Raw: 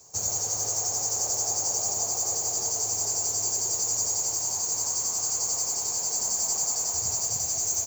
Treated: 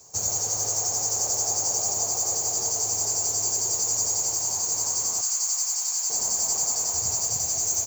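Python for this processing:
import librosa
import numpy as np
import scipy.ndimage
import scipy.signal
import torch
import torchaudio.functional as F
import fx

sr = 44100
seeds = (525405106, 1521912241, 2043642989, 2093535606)

y = fx.highpass(x, sr, hz=1200.0, slope=12, at=(5.21, 6.1))
y = fx.echo_filtered(y, sr, ms=275, feedback_pct=26, hz=2000.0, wet_db=-18.5)
y = y * librosa.db_to_amplitude(2.0)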